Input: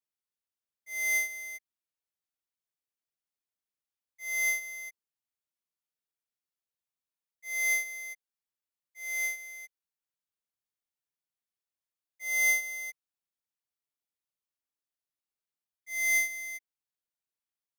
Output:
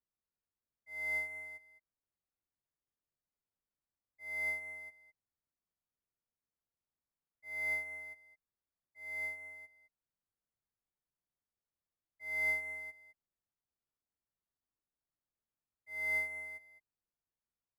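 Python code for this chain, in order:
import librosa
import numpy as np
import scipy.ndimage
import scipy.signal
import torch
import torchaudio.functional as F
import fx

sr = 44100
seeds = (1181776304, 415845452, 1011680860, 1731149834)

y = scipy.signal.lfilter(np.full(14, 1.0 / 14), 1.0, x)
y = fx.low_shelf(y, sr, hz=180.0, db=10.0)
y = y + 10.0 ** (-14.5 / 20.0) * np.pad(y, (int(211 * sr / 1000.0), 0))[:len(y)]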